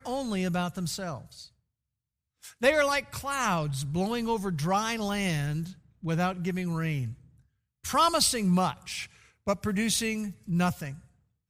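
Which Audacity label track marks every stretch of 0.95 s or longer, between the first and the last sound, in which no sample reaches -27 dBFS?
1.140000	2.630000	silence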